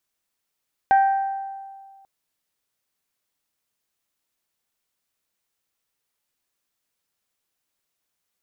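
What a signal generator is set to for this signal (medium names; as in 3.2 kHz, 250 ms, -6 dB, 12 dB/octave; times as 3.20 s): glass hit bell, length 1.14 s, lowest mode 782 Hz, decay 1.81 s, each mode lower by 11.5 dB, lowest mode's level -11.5 dB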